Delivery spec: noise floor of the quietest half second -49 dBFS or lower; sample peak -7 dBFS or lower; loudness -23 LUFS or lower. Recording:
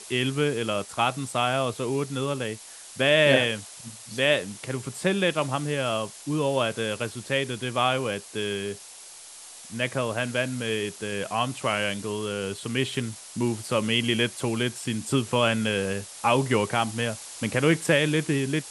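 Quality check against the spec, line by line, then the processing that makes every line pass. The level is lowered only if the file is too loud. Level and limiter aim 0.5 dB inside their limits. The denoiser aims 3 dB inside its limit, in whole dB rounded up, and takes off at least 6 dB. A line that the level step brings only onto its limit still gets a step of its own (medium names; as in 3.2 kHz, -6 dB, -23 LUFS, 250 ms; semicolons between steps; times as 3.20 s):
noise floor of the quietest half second -45 dBFS: fail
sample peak -5.5 dBFS: fail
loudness -26.0 LUFS: pass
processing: noise reduction 7 dB, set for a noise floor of -45 dBFS; peak limiter -7.5 dBFS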